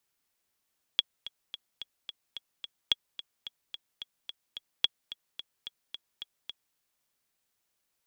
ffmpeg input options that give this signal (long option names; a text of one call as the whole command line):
ffmpeg -f lavfi -i "aevalsrc='pow(10,(-9.5-16*gte(mod(t,7*60/218),60/218))/20)*sin(2*PI*3340*mod(t,60/218))*exp(-6.91*mod(t,60/218)/0.03)':duration=5.77:sample_rate=44100" out.wav